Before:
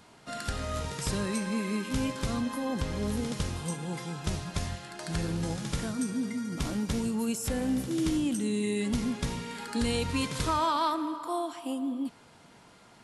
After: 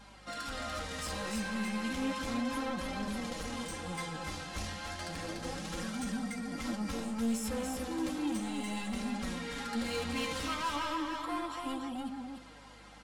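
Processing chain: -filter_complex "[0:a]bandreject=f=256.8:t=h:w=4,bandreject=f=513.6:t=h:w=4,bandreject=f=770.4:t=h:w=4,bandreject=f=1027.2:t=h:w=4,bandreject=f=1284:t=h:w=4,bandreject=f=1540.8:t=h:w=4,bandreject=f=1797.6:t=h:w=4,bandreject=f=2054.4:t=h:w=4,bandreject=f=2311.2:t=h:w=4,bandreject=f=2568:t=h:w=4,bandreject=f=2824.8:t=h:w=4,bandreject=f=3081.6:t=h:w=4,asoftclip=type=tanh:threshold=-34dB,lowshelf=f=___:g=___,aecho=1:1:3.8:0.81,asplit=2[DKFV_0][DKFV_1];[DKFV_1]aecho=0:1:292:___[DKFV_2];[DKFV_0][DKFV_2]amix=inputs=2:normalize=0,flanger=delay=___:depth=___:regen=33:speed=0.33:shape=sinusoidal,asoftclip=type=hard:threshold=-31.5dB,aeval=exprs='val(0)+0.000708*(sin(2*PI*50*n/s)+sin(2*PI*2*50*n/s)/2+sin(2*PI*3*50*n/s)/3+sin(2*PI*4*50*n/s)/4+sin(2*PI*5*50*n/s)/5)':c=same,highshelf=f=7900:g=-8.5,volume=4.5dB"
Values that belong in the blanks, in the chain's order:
400, -7, 0.631, 5, 9.1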